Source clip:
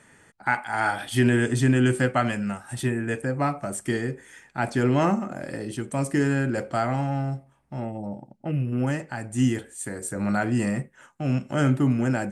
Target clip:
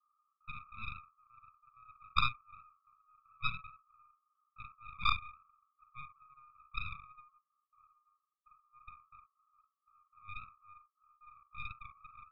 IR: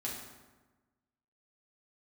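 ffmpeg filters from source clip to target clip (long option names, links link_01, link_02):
-filter_complex "[0:a]asuperpass=centerf=1200:order=12:qfactor=5.8[link_01];[1:a]atrim=start_sample=2205,atrim=end_sample=3969[link_02];[link_01][link_02]afir=irnorm=-1:irlink=0,aeval=exprs='0.0841*(cos(1*acos(clip(val(0)/0.0841,-1,1)))-cos(1*PI/2))+0.0335*(cos(3*acos(clip(val(0)/0.0841,-1,1)))-cos(3*PI/2))+0.015*(cos(4*acos(clip(val(0)/0.0841,-1,1)))-cos(4*PI/2))+0.0015*(cos(6*acos(clip(val(0)/0.0841,-1,1)))-cos(6*PI/2))':channel_layout=same,volume=6.5dB"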